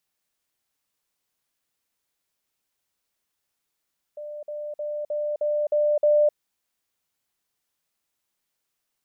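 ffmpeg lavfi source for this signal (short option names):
-f lavfi -i "aevalsrc='pow(10,(-33+3*floor(t/0.31))/20)*sin(2*PI*595*t)*clip(min(mod(t,0.31),0.26-mod(t,0.31))/0.005,0,1)':d=2.17:s=44100"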